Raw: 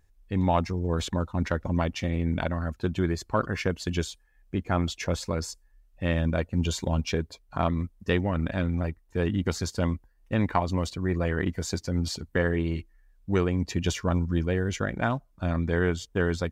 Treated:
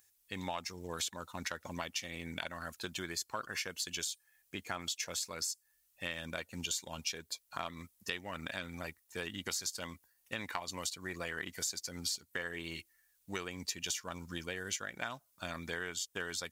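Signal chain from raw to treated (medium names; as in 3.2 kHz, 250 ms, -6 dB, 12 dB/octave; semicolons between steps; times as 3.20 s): high-pass 91 Hz; pre-emphasis filter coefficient 0.97; compression 4:1, threshold -48 dBFS, peak gain reduction 13 dB; trim +12 dB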